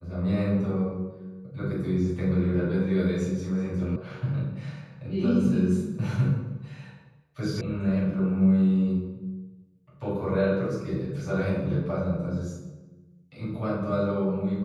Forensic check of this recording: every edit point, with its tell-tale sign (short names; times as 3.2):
3.96 sound cut off
7.61 sound cut off